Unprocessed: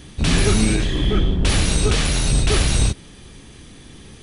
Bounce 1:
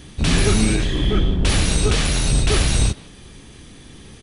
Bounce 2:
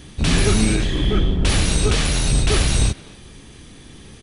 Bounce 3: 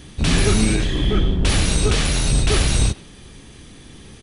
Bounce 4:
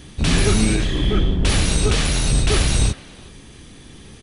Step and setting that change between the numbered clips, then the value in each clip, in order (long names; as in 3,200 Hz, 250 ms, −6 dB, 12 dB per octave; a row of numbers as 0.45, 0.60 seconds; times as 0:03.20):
far-end echo of a speakerphone, delay time: 160, 250, 110, 370 milliseconds